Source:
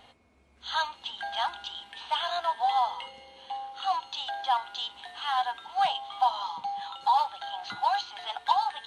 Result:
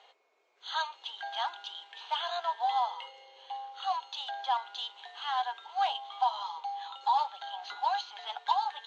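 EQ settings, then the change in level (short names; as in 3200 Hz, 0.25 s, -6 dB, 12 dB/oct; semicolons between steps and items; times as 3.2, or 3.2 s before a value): Chebyshev band-pass 400–7100 Hz, order 4; -3.5 dB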